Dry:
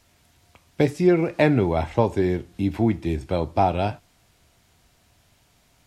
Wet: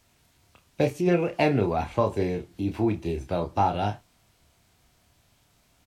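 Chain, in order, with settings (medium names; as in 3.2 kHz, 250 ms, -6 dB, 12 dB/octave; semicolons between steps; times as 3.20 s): doubling 29 ms -7 dB; formant shift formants +2 st; trim -4 dB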